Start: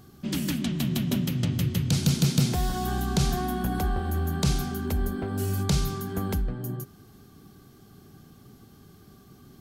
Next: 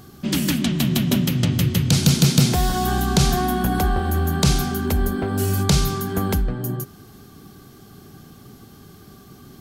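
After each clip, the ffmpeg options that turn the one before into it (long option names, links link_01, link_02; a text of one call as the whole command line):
ffmpeg -i in.wav -af "lowshelf=frequency=340:gain=-3,volume=9dB" out.wav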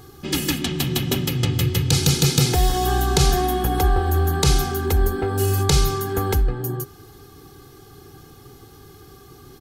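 ffmpeg -i in.wav -af "aecho=1:1:2.4:0.72,volume=-1dB" out.wav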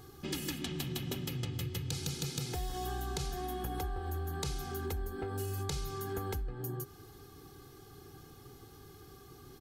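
ffmpeg -i in.wav -af "acompressor=threshold=-26dB:ratio=6,volume=-8.5dB" out.wav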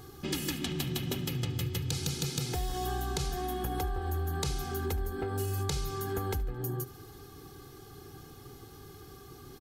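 ffmpeg -i in.wav -af "aecho=1:1:73|146|219|292:0.0891|0.0508|0.029|0.0165,volume=4dB" out.wav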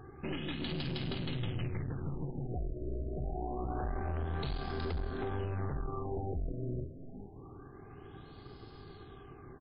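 ffmpeg -i in.wav -filter_complex "[0:a]asplit=4[link_01][link_02][link_03][link_04];[link_02]adelay=368,afreqshift=-120,volume=-9.5dB[link_05];[link_03]adelay=736,afreqshift=-240,volume=-20dB[link_06];[link_04]adelay=1104,afreqshift=-360,volume=-30.4dB[link_07];[link_01][link_05][link_06][link_07]amix=inputs=4:normalize=0,aeval=exprs='(tanh(44.7*val(0)+0.6)-tanh(0.6))/44.7':channel_layout=same,afftfilt=real='re*lt(b*sr/1024,650*pow(5200/650,0.5+0.5*sin(2*PI*0.26*pts/sr)))':imag='im*lt(b*sr/1024,650*pow(5200/650,0.5+0.5*sin(2*PI*0.26*pts/sr)))':win_size=1024:overlap=0.75,volume=1.5dB" out.wav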